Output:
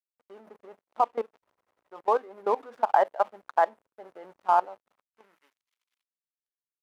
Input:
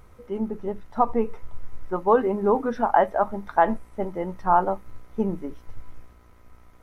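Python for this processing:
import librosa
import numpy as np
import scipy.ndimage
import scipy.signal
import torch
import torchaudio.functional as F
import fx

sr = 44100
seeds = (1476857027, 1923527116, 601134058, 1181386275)

y = fx.backlash(x, sr, play_db=-31.5)
y = fx.level_steps(y, sr, step_db=20)
y = fx.filter_sweep_highpass(y, sr, from_hz=570.0, to_hz=3100.0, start_s=4.79, end_s=5.7, q=1.0)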